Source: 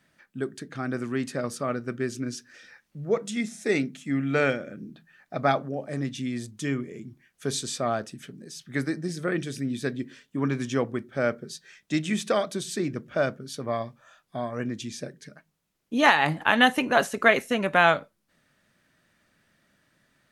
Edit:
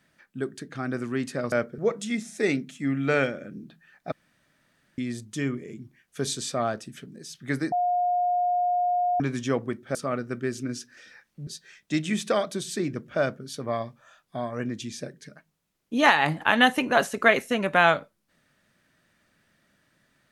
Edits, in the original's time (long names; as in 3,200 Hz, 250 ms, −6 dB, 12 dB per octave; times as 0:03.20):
0:01.52–0:03.04: swap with 0:11.21–0:11.47
0:05.38–0:06.24: fill with room tone
0:08.98–0:10.46: beep over 714 Hz −21 dBFS